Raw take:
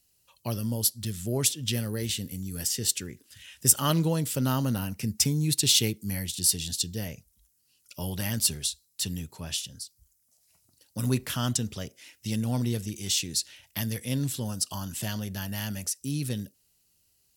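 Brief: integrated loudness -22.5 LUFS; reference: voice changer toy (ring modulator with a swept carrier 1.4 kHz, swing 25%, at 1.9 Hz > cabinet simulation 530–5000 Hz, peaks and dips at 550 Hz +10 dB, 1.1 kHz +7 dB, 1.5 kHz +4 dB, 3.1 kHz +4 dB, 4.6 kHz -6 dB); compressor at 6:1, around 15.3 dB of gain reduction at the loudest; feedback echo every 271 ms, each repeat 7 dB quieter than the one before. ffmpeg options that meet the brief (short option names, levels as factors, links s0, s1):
-af "acompressor=threshold=0.0282:ratio=6,aecho=1:1:271|542|813|1084|1355:0.447|0.201|0.0905|0.0407|0.0183,aeval=exprs='val(0)*sin(2*PI*1400*n/s+1400*0.25/1.9*sin(2*PI*1.9*n/s))':c=same,highpass=530,equalizer=f=550:t=q:w=4:g=10,equalizer=f=1100:t=q:w=4:g=7,equalizer=f=1500:t=q:w=4:g=4,equalizer=f=3100:t=q:w=4:g=4,equalizer=f=4600:t=q:w=4:g=-6,lowpass=f=5000:w=0.5412,lowpass=f=5000:w=1.3066,volume=3.98"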